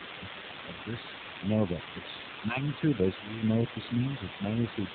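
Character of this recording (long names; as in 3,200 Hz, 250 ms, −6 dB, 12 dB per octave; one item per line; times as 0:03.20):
sample-and-hold tremolo, depth 75%
phaser sweep stages 6, 0.68 Hz, lowest notch 480–2,500 Hz
a quantiser's noise floor 6 bits, dither triangular
AMR narrowband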